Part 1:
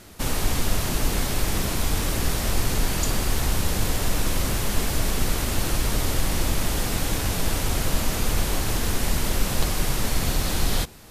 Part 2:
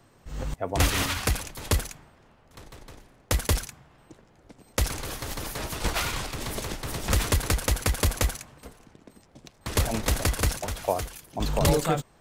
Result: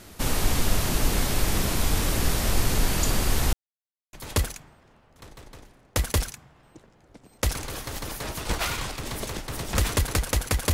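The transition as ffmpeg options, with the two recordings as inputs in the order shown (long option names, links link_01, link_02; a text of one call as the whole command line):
ffmpeg -i cue0.wav -i cue1.wav -filter_complex "[0:a]apad=whole_dur=10.73,atrim=end=10.73,asplit=2[link_01][link_02];[link_01]atrim=end=3.53,asetpts=PTS-STARTPTS,afade=type=out:start_time=3.526:duration=0.004:curve=hsin[link_03];[link_02]atrim=start=3.53:end=4.13,asetpts=PTS-STARTPTS,volume=0[link_04];[1:a]atrim=start=1.48:end=8.08,asetpts=PTS-STARTPTS,afade=type=in:duration=0.004:curve=hsin[link_05];[link_03][link_04][link_05]concat=n=3:v=0:a=1" out.wav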